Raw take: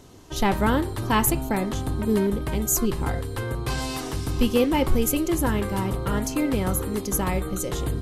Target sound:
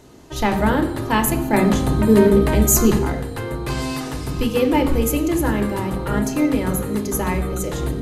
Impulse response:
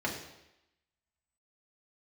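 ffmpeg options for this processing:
-filter_complex "[0:a]asettb=1/sr,asplit=3[s0][s1][s2];[s0]atrim=end=1.534[s3];[s1]atrim=start=1.53:end=2.99,asetpts=PTS-STARTPTS,afade=t=in:d=0.004:c=qsin,afade=t=out:st=1.456:d=0.004:c=qsin,acontrast=63[s4];[s2]atrim=start=2.986[s5];[s3][s4]acrossfade=d=0.004:c1=hsin:c2=qsin[s6];[s6][s5]acrossfade=d=0.004:c1=qsin:c2=hsin,asplit=2[s7][s8];[1:a]atrim=start_sample=2205,asetrate=41013,aresample=44100[s9];[s8][s9]afir=irnorm=-1:irlink=0,volume=0.473[s10];[s7][s10]amix=inputs=2:normalize=0,volume=0.841"

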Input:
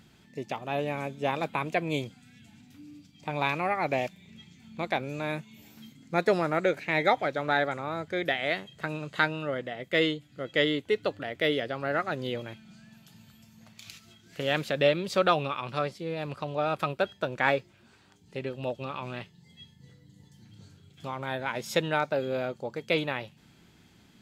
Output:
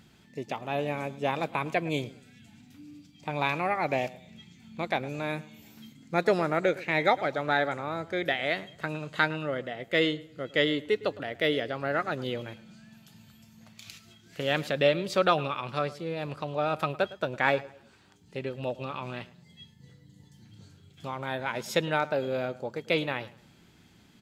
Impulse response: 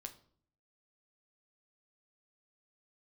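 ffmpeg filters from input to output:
-filter_complex "[0:a]asplit=2[s0][s1];[s1]adelay=109,lowpass=f=2500:p=1,volume=0.126,asplit=2[s2][s3];[s3]adelay=109,lowpass=f=2500:p=1,volume=0.33,asplit=2[s4][s5];[s5]adelay=109,lowpass=f=2500:p=1,volume=0.33[s6];[s0][s2][s4][s6]amix=inputs=4:normalize=0"

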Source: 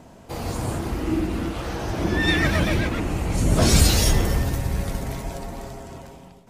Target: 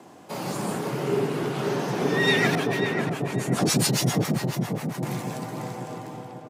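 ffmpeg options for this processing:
-filter_complex "[0:a]asettb=1/sr,asplit=3[s0][s1][s2];[s0]atrim=end=2.554[s3];[s1]atrim=start=2.55:end=5.03,asetpts=PTS-STARTPTS,afade=t=in:d=0.004:c=qsin,afade=t=out:st=2.476:d=0.004:c=qsin,acrossover=split=650[s4][s5];[s4]aeval=exprs='val(0)*(1-1/2+1/2*cos(2*PI*7.3*n/s))':c=same[s6];[s5]aeval=exprs='val(0)*(1-1/2-1/2*cos(2*PI*7.3*n/s))':c=same[s7];[s6][s7]amix=inputs=2:normalize=0[s8];[s2]atrim=start=5.026[s9];[s3][s8]acrossfade=d=0.004:c1=hsin:c2=qsin[s10];[s10][s9]acrossfade=d=0.004:c1=qsin:c2=hsin,afreqshift=86,lowshelf=f=170:g=-8.5,asplit=2[s11][s12];[s12]adelay=542,lowpass=f=1500:p=1,volume=0.668,asplit=2[s13][s14];[s14]adelay=542,lowpass=f=1500:p=1,volume=0.43,asplit=2[s15][s16];[s16]adelay=542,lowpass=f=1500:p=1,volume=0.43,asplit=2[s17][s18];[s18]adelay=542,lowpass=f=1500:p=1,volume=0.43,asplit=2[s19][s20];[s20]adelay=542,lowpass=f=1500:p=1,volume=0.43[s21];[s11][s13][s15][s17][s19][s21]amix=inputs=6:normalize=0"

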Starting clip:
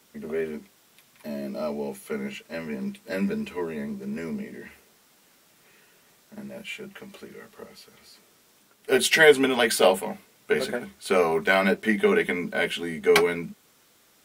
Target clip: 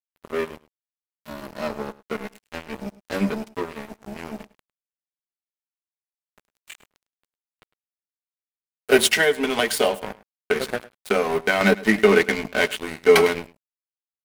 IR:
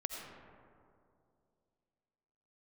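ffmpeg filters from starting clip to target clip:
-filter_complex "[0:a]aeval=exprs='sgn(val(0))*max(abs(val(0))-0.0282,0)':c=same,asettb=1/sr,asplit=3[s0][s1][s2];[s0]atrim=end=9.064[s3];[s1]atrim=start=9.06:end=11.61,asetpts=PTS-STARTPTS,afade=t=in:d=0.004:c=qsin,afade=t=out:st=2.546:d=0.004:c=qsin,acompressor=threshold=0.0562:ratio=4[s4];[s2]atrim=start=11.606[s5];[s3][s4]acrossfade=d=0.004:c1=hsin:c2=qsin[s6];[s6][s5]acrossfade=d=0.004:c1=qsin:c2=hsin,aecho=1:1:104:0.106,alimiter=level_in=2.66:limit=0.891:release=50:level=0:latency=1,volume=0.891"

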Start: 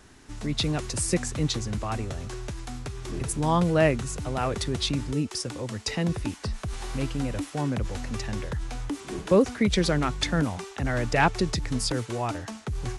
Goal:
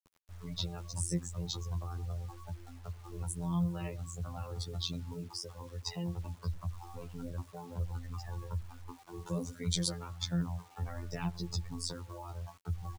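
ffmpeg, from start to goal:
-filter_complex "[0:a]asettb=1/sr,asplit=3[s0][s1][s2];[s0]atrim=end=9.194[s3];[s1]atrim=start=9.19:end=9.88,asetpts=PTS-STARTPTS,afade=t=in:d=0.004:c=qsin,afade=t=out:st=0.686:d=0.004:c=qsin,aemphasis=mode=production:type=50kf[s4];[s2]atrim=start=9.876[s5];[s3][s4]acrossfade=d=0.004:c1=hsin:c2=qsin[s6];[s6][s5]acrossfade=d=0.004:c1=qsin:c2=hsin,asplit=2[s7][s8];[s8]adelay=99,lowpass=f=2000:p=1,volume=0.119,asplit=2[s9][s10];[s10]adelay=99,lowpass=f=2000:p=1,volume=0.26[s11];[s7][s9][s11]amix=inputs=3:normalize=0,afftfilt=real='hypot(re,im)*cos(PI*b)':imag='0':win_size=2048:overlap=0.75,flanger=delay=9.2:depth=1.9:regen=-13:speed=1.3:shape=sinusoidal,equalizer=f=125:t=o:w=1:g=4,equalizer=f=250:t=o:w=1:g=-10,equalizer=f=1000:t=o:w=1:g=8,equalizer=f=2000:t=o:w=1:g=-6,afftdn=nr=17:nf=-41,acrossover=split=300|3000[s12][s13][s14];[s13]acompressor=threshold=0.00398:ratio=5[s15];[s12][s15][s14]amix=inputs=3:normalize=0,acrusher=bits=9:mix=0:aa=0.000001"

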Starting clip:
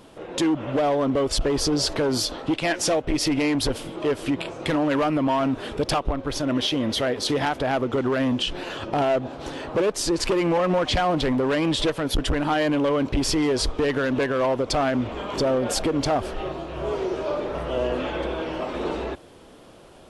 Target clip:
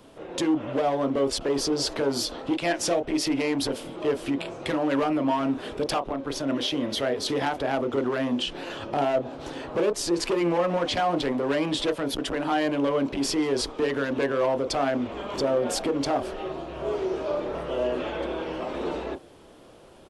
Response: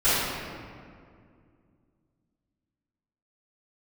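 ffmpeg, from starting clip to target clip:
-filter_complex "[0:a]acrossover=split=180|960|2000[s0][s1][s2][s3];[s0]acompressor=threshold=0.0112:ratio=6[s4];[s1]asplit=2[s5][s6];[s6]adelay=29,volume=0.75[s7];[s5][s7]amix=inputs=2:normalize=0[s8];[s4][s8][s2][s3]amix=inputs=4:normalize=0,volume=0.668"

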